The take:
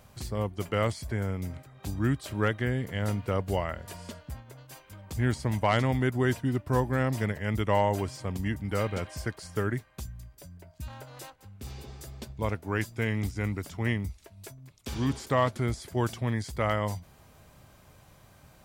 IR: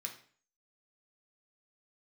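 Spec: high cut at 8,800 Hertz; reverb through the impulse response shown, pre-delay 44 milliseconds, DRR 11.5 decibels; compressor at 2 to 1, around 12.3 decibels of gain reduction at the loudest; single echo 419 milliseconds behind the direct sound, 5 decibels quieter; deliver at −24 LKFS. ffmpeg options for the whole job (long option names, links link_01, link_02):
-filter_complex "[0:a]lowpass=8800,acompressor=threshold=-44dB:ratio=2,aecho=1:1:419:0.562,asplit=2[link_01][link_02];[1:a]atrim=start_sample=2205,adelay=44[link_03];[link_02][link_03]afir=irnorm=-1:irlink=0,volume=-9.5dB[link_04];[link_01][link_04]amix=inputs=2:normalize=0,volume=16.5dB"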